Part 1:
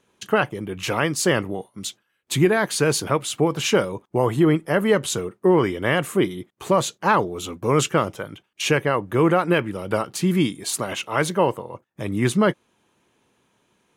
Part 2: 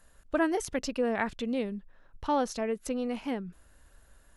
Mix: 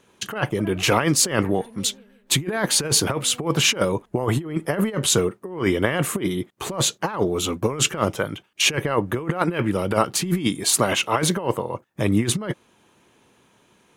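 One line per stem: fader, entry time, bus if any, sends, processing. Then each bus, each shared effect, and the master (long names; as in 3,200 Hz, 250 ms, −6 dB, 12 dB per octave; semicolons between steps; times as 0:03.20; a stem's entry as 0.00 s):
+3.0 dB, 0.00 s, no send, no echo send, no processing
−17.5 dB, 0.25 s, no send, echo send −8 dB, no processing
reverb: not used
echo: repeating echo 160 ms, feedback 42%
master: compressor whose output falls as the input rises −20 dBFS, ratio −0.5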